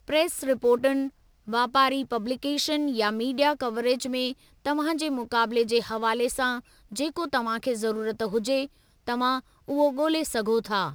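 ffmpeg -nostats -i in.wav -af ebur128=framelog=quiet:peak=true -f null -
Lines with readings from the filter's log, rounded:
Integrated loudness:
  I:         -26.2 LUFS
  Threshold: -36.3 LUFS
Loudness range:
  LRA:         2.7 LU
  Threshold: -46.6 LUFS
  LRA low:   -28.1 LUFS
  LRA high:  -25.4 LUFS
True peak:
  Peak:       -9.7 dBFS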